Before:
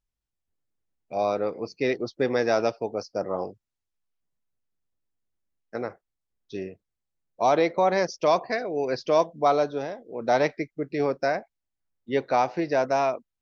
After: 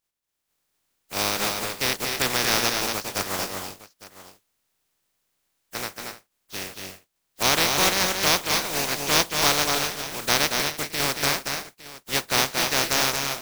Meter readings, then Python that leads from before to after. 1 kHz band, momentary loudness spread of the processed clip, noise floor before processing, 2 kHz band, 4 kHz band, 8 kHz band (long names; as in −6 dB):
−1.0 dB, 15 LU, −85 dBFS, +8.5 dB, +18.0 dB, can't be measured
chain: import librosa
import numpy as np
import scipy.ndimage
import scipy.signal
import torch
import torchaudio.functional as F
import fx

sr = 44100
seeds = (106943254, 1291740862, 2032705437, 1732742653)

y = fx.spec_flatten(x, sr, power=0.19)
y = fx.echo_multitap(y, sr, ms=(230, 251, 303, 859), db=(-5.0, -12.5, -17.5, -17.0))